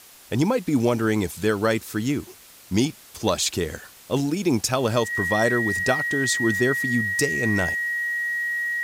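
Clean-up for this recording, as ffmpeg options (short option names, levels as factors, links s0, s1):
-af "bandreject=f=1900:w=30,afwtdn=0.0045"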